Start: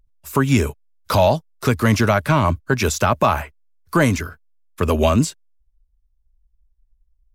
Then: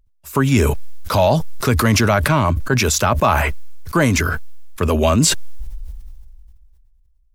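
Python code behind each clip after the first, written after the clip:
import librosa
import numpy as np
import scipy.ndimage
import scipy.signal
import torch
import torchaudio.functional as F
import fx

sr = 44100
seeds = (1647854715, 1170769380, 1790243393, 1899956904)

y = fx.sustainer(x, sr, db_per_s=23.0)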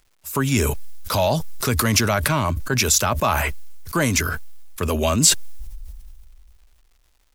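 y = fx.high_shelf(x, sr, hz=3500.0, db=9.5)
y = fx.dmg_crackle(y, sr, seeds[0], per_s=370.0, level_db=-45.0)
y = y * librosa.db_to_amplitude(-5.5)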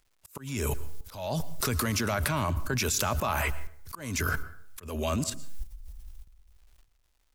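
y = fx.level_steps(x, sr, step_db=14)
y = fx.auto_swell(y, sr, attack_ms=276.0)
y = fx.rev_plate(y, sr, seeds[1], rt60_s=0.59, hf_ratio=0.6, predelay_ms=100, drr_db=16.5)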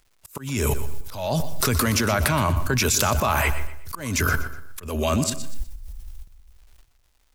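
y = fx.echo_feedback(x, sr, ms=122, feedback_pct=34, wet_db=-13.5)
y = y * librosa.db_to_amplitude(7.0)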